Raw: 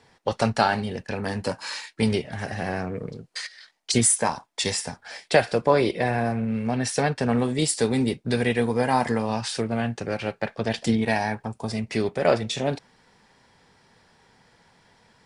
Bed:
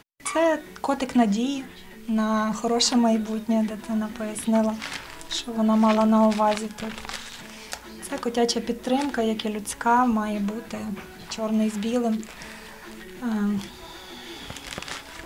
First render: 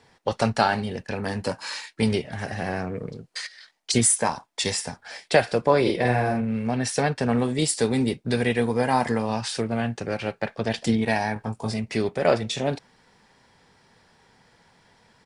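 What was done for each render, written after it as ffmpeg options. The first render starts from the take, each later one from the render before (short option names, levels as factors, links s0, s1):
-filter_complex "[0:a]asplit=3[s0][s1][s2];[s0]afade=t=out:st=5.85:d=0.02[s3];[s1]asplit=2[s4][s5];[s5]adelay=49,volume=0.708[s6];[s4][s6]amix=inputs=2:normalize=0,afade=t=in:st=5.85:d=0.02,afade=t=out:st=6.4:d=0.02[s7];[s2]afade=t=in:st=6.4:d=0.02[s8];[s3][s7][s8]amix=inputs=3:normalize=0,asettb=1/sr,asplit=3[s9][s10][s11];[s9]atrim=end=11.344[s12];[s10]atrim=start=11.34:end=11.74,asetpts=PTS-STARTPTS,afade=t=in:d=0.004:c=qsin,afade=t=out:st=0.396:d=0.004:c=qsin,asplit=2[s13][s14];[s14]adelay=19,volume=0.631[s15];[s13][s15]amix=inputs=2:normalize=0,atrim=end_sample=17640[s16];[s11]atrim=start=11.736[s17];[s12][s16]acrossfade=d=0.004:c1=hsin:c2=qsin[s18];[s18][s17]acrossfade=d=0.004:c1=qsin:c2=hsin"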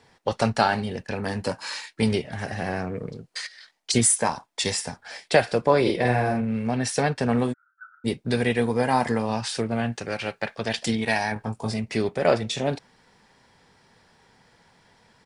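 -filter_complex "[0:a]asplit=3[s0][s1][s2];[s0]afade=t=out:st=7.52:d=0.02[s3];[s1]asuperpass=centerf=1400:order=8:qfactor=5.9,afade=t=in:st=7.52:d=0.02,afade=t=out:st=8.04:d=0.02[s4];[s2]afade=t=in:st=8.04:d=0.02[s5];[s3][s4][s5]amix=inputs=3:normalize=0,asettb=1/sr,asplit=3[s6][s7][s8];[s6]atrim=end=9.924[s9];[s7]atrim=start=9.92:end=11.32,asetpts=PTS-STARTPTS,afade=t=in:d=0.004:c=qsin,afade=t=out:st=1.396:d=0.004:c=qsin,tiltshelf=f=970:g=-4[s10];[s8]atrim=start=11.316[s11];[s9][s10]acrossfade=d=0.004:c1=hsin:c2=qsin[s12];[s12][s11]acrossfade=d=0.004:c1=qsin:c2=hsin"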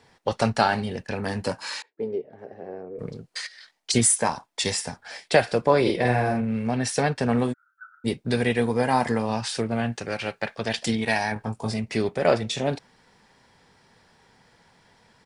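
-filter_complex "[0:a]asettb=1/sr,asplit=3[s0][s1][s2];[s0]atrim=end=1.824[s3];[s1]atrim=start=1.82:end=2.99,asetpts=PTS-STARTPTS,afade=t=in:d=0.004:c=qsin,afade=t=out:st=1.166:d=0.004:c=qsin,bandpass=f=430:t=q:w=3.3[s4];[s2]atrim=start=2.986[s5];[s3][s4]acrossfade=d=0.004:c1=hsin:c2=qsin[s6];[s6][s5]acrossfade=d=0.004:c1=qsin:c2=hsin"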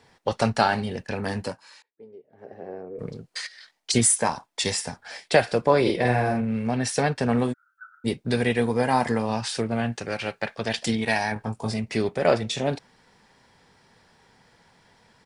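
-filter_complex "[0:a]asplit=3[s0][s1][s2];[s0]atrim=end=1.62,asetpts=PTS-STARTPTS,afade=t=out:st=1.38:d=0.24:silence=0.141254[s3];[s1]atrim=start=1.62:end=2.28,asetpts=PTS-STARTPTS,volume=0.141[s4];[s2]atrim=start=2.28,asetpts=PTS-STARTPTS,afade=t=in:d=0.24:silence=0.141254[s5];[s3][s4][s5]concat=n=3:v=0:a=1"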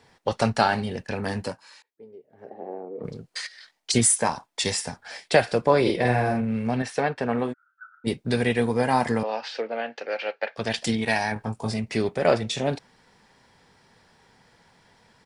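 -filter_complex "[0:a]asplit=3[s0][s1][s2];[s0]afade=t=out:st=2.49:d=0.02[s3];[s1]highpass=220,equalizer=f=220:t=q:w=4:g=4,equalizer=f=320:t=q:w=4:g=4,equalizer=f=830:t=q:w=4:g=8,equalizer=f=1600:t=q:w=4:g=-9,equalizer=f=2600:t=q:w=4:g=-8,lowpass=f=3600:w=0.5412,lowpass=f=3600:w=1.3066,afade=t=in:st=2.49:d=0.02,afade=t=out:st=3.03:d=0.02[s4];[s2]afade=t=in:st=3.03:d=0.02[s5];[s3][s4][s5]amix=inputs=3:normalize=0,asettb=1/sr,asplit=3[s6][s7][s8];[s6]atrim=end=6.824[s9];[s7]atrim=start=6.82:end=8.07,asetpts=PTS-STARTPTS,afade=t=in:d=0.004:c=qsin,afade=t=out:st=1.246:d=0.004:c=qsin,bass=f=250:g=-8,treble=f=4000:g=-13[s10];[s8]atrim=start=8.066[s11];[s9][s10]acrossfade=d=0.004:c1=hsin:c2=qsin[s12];[s12][s11]acrossfade=d=0.004:c1=qsin:c2=hsin,asettb=1/sr,asplit=3[s13][s14][s15];[s13]atrim=end=9.234[s16];[s14]atrim=start=9.23:end=10.56,asetpts=PTS-STARTPTS,afade=t=in:d=0.004:c=qsin,afade=t=out:st=1.326:d=0.004:c=qsin,highpass=f=340:w=0.5412,highpass=f=340:w=1.3066,equalizer=f=360:t=q:w=4:g=-7,equalizer=f=520:t=q:w=4:g=5,equalizer=f=1100:t=q:w=4:g=-5,equalizer=f=3700:t=q:w=4:g=-4,lowpass=f=4400:w=0.5412,lowpass=f=4400:w=1.3066[s17];[s15]atrim=start=10.556[s18];[s16][s17]acrossfade=d=0.004:c1=hsin:c2=qsin[s19];[s19][s18]acrossfade=d=0.004:c1=qsin:c2=hsin"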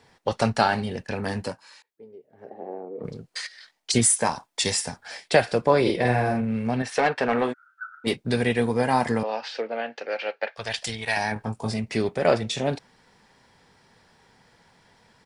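-filter_complex "[0:a]asettb=1/sr,asplit=3[s0][s1][s2];[s0]atrim=end=4.214[s3];[s1]atrim=start=4.21:end=5.15,asetpts=PTS-STARTPTS,afade=t=in:d=0.004:c=qsin,afade=t=out:st=0.936:d=0.004:c=qsin,highshelf=f=5200:g=4[s4];[s2]atrim=start=5.146[s5];[s3][s4]acrossfade=d=0.004:c1=hsin:c2=qsin[s6];[s6][s5]acrossfade=d=0.004:c1=qsin:c2=hsin,asplit=3[s7][s8][s9];[s7]afade=t=out:st=6.91:d=0.02[s10];[s8]asplit=2[s11][s12];[s12]highpass=f=720:p=1,volume=5.01,asoftclip=type=tanh:threshold=0.282[s13];[s11][s13]amix=inputs=2:normalize=0,lowpass=f=5100:p=1,volume=0.501,afade=t=in:st=6.91:d=0.02,afade=t=out:st=8.15:d=0.02[s14];[s9]afade=t=in:st=8.15:d=0.02[s15];[s10][s14][s15]amix=inputs=3:normalize=0,asettb=1/sr,asplit=3[s16][s17][s18];[s16]atrim=end=10.504[s19];[s17]atrim=start=10.5:end=11.17,asetpts=PTS-STARTPTS,afade=t=in:d=0.004:c=qsin,afade=t=out:st=0.666:d=0.004:c=qsin,equalizer=f=250:w=0.87:g=-15[s20];[s18]atrim=start=11.166[s21];[s19][s20]acrossfade=d=0.004:c1=hsin:c2=qsin[s22];[s22][s21]acrossfade=d=0.004:c1=qsin:c2=hsin"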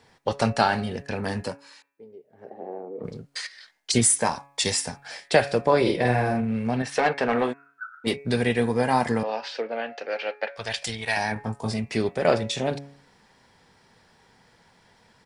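-af "bandreject=f=140.3:t=h:w=4,bandreject=f=280.6:t=h:w=4,bandreject=f=420.9:t=h:w=4,bandreject=f=561.2:t=h:w=4,bandreject=f=701.5:t=h:w=4,bandreject=f=841.8:t=h:w=4,bandreject=f=982.1:t=h:w=4,bandreject=f=1122.4:t=h:w=4,bandreject=f=1262.7:t=h:w=4,bandreject=f=1403:t=h:w=4,bandreject=f=1543.3:t=h:w=4,bandreject=f=1683.6:t=h:w=4,bandreject=f=1823.9:t=h:w=4,bandreject=f=1964.2:t=h:w=4,bandreject=f=2104.5:t=h:w=4,bandreject=f=2244.8:t=h:w=4,bandreject=f=2385.1:t=h:w=4,bandreject=f=2525.4:t=h:w=4,bandreject=f=2665.7:t=h:w=4"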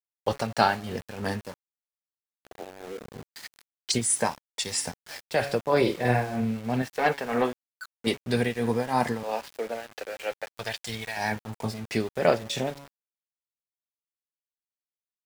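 -af "tremolo=f=3.1:d=0.69,aeval=exprs='val(0)*gte(abs(val(0)),0.0112)':c=same"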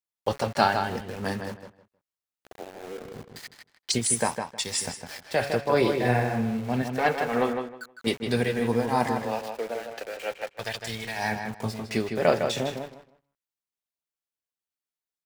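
-filter_complex "[0:a]asplit=2[s0][s1];[s1]adelay=157,lowpass=f=3800:p=1,volume=0.501,asplit=2[s2][s3];[s3]adelay=157,lowpass=f=3800:p=1,volume=0.21,asplit=2[s4][s5];[s5]adelay=157,lowpass=f=3800:p=1,volume=0.21[s6];[s0][s2][s4][s6]amix=inputs=4:normalize=0"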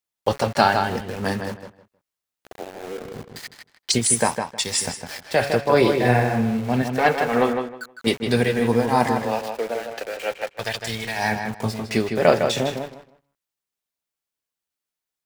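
-af "volume=1.88,alimiter=limit=0.891:level=0:latency=1"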